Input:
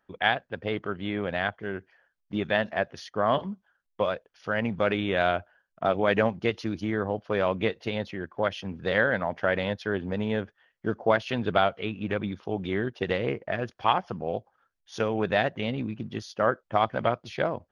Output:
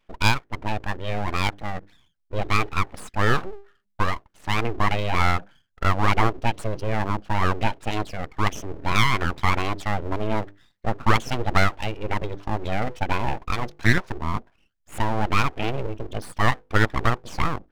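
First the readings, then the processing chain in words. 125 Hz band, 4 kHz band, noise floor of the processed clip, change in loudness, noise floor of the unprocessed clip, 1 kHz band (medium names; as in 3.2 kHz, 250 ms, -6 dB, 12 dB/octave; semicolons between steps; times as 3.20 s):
+9.5 dB, +4.5 dB, -69 dBFS, +3.0 dB, -77 dBFS, +4.5 dB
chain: resonances exaggerated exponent 1.5; hum notches 50/100/150/200/250 Hz; full-wave rectifier; trim +6.5 dB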